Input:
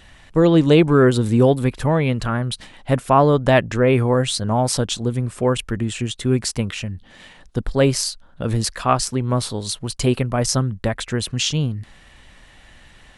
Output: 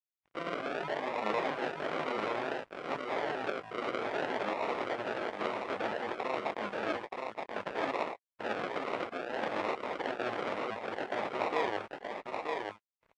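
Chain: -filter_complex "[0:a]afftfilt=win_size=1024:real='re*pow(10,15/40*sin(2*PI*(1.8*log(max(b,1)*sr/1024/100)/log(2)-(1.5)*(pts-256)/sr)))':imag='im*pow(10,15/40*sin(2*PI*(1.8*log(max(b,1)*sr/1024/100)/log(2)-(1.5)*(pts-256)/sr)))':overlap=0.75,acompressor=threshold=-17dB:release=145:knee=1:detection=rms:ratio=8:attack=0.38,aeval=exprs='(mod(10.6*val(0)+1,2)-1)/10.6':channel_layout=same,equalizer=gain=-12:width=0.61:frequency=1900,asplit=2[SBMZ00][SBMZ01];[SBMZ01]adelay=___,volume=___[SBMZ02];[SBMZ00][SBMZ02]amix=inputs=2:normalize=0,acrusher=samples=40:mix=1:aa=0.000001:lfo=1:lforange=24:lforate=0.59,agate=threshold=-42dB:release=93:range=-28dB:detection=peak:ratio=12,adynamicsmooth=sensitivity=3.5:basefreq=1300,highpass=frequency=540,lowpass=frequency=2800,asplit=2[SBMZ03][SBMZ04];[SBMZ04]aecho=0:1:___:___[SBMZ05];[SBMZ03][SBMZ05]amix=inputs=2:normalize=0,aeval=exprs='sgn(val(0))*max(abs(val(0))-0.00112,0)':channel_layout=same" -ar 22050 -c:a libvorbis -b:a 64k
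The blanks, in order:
19, -5dB, 926, 0.631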